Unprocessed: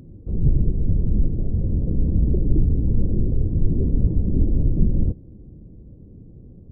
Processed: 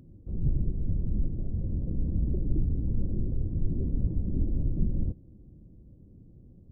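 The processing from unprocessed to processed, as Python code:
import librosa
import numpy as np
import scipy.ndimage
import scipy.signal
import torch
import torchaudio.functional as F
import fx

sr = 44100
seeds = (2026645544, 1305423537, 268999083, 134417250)

y = fx.peak_eq(x, sr, hz=440.0, db=-5.0, octaves=0.26)
y = y * librosa.db_to_amplitude(-9.0)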